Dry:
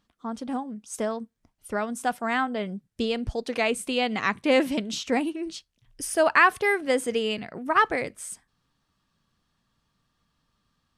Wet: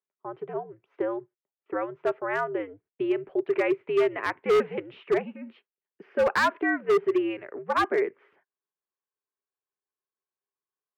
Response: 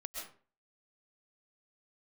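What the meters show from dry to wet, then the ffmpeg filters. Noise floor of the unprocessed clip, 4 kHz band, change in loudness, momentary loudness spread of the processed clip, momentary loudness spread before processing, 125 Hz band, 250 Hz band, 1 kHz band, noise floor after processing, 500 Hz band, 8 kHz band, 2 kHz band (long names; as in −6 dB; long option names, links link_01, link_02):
−75 dBFS, −9.0 dB, −1.5 dB, 14 LU, 15 LU, −5.5 dB, −2.5 dB, −4.0 dB, below −85 dBFS, +1.5 dB, below −15 dB, −5.0 dB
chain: -af "agate=range=-21dB:threshold=-47dB:ratio=16:detection=peak,equalizer=frequency=500:width_type=o:width=0.3:gain=13,highpass=frequency=400:width_type=q:width=0.5412,highpass=frequency=400:width_type=q:width=1.307,lowpass=frequency=2500:width_type=q:width=0.5176,lowpass=frequency=2500:width_type=q:width=0.7071,lowpass=frequency=2500:width_type=q:width=1.932,afreqshift=-97,asoftclip=type=hard:threshold=-15dB,volume=-2.5dB"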